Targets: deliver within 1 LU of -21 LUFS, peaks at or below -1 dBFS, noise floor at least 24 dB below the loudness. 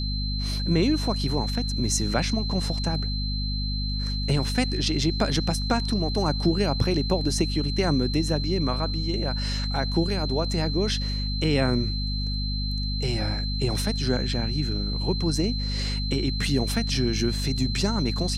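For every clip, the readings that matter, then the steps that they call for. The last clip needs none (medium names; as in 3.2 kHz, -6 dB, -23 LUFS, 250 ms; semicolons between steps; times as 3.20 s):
hum 50 Hz; highest harmonic 250 Hz; hum level -26 dBFS; steady tone 4.1 kHz; tone level -32 dBFS; loudness -25.5 LUFS; peak level -8.0 dBFS; loudness target -21.0 LUFS
-> de-hum 50 Hz, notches 5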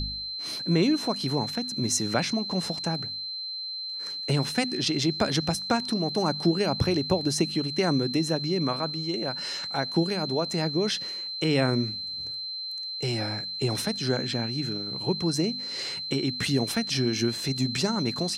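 hum not found; steady tone 4.1 kHz; tone level -32 dBFS
-> band-stop 4.1 kHz, Q 30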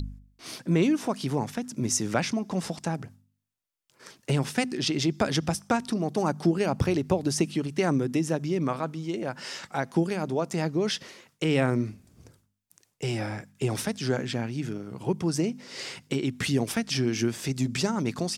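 steady tone not found; loudness -28.5 LUFS; peak level -9.5 dBFS; loudness target -21.0 LUFS
-> trim +7.5 dB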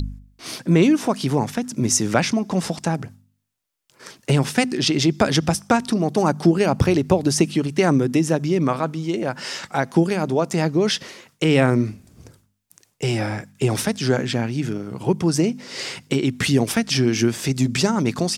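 loudness -21.0 LUFS; peak level -2.0 dBFS; noise floor -66 dBFS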